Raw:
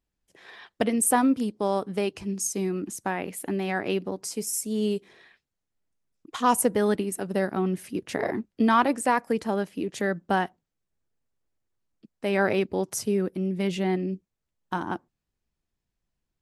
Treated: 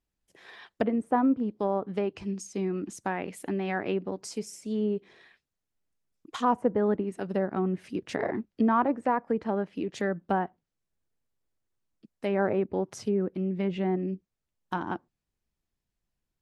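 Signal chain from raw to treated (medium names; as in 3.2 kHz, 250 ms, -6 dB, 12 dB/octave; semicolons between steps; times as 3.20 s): low-pass that closes with the level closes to 1.2 kHz, closed at -21 dBFS; trim -2 dB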